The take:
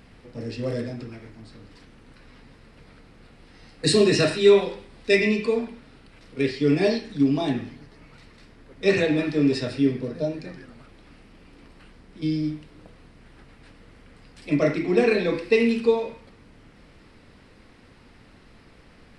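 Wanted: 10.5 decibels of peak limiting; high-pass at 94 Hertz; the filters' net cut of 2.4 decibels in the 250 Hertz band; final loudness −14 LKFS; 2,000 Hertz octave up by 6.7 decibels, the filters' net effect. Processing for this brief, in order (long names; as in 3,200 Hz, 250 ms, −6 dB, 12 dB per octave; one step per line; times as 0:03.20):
high-pass filter 94 Hz
parametric band 250 Hz −3 dB
parametric band 2,000 Hz +8 dB
level +10.5 dB
brickwall limiter −1.5 dBFS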